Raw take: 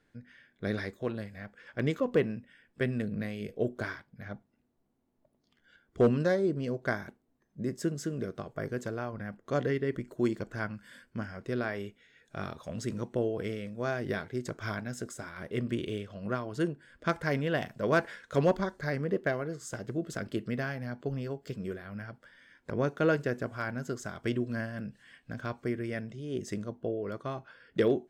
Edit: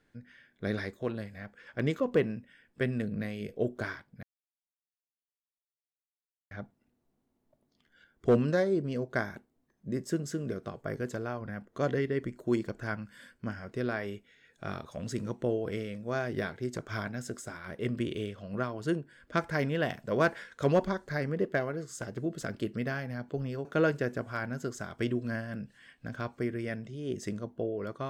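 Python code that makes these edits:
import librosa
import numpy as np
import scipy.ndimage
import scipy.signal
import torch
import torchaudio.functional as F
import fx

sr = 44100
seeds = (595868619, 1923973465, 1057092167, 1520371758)

y = fx.edit(x, sr, fx.insert_silence(at_s=4.23, length_s=2.28),
    fx.cut(start_s=21.37, length_s=1.53), tone=tone)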